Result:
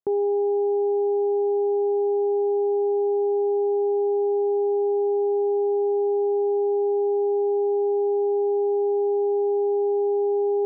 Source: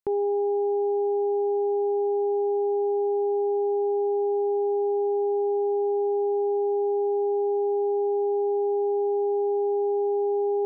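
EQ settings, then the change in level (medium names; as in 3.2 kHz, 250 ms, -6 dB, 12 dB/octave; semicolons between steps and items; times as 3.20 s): band-pass filter 350 Hz, Q 0.52; +2.5 dB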